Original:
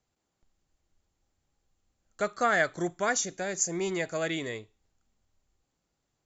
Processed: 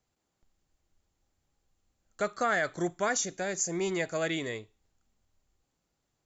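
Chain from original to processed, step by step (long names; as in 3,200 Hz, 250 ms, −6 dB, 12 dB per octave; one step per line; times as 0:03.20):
brickwall limiter −18.5 dBFS, peak gain reduction 5.5 dB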